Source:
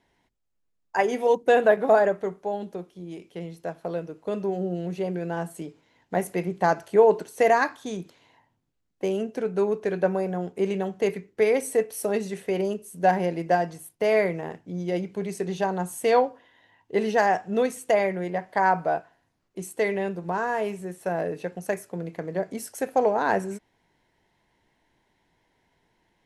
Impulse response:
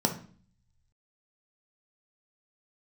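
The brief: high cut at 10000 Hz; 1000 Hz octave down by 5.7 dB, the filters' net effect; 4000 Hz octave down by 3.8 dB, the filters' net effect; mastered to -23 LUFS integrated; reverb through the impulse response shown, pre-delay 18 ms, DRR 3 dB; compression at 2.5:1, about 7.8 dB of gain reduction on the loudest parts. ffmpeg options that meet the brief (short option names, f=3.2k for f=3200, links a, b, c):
-filter_complex "[0:a]lowpass=10k,equalizer=f=1k:t=o:g=-8.5,equalizer=f=4k:t=o:g=-4.5,acompressor=threshold=-25dB:ratio=2.5,asplit=2[a][b];[1:a]atrim=start_sample=2205,adelay=18[c];[b][c]afir=irnorm=-1:irlink=0,volume=-12.5dB[d];[a][d]amix=inputs=2:normalize=0,volume=3dB"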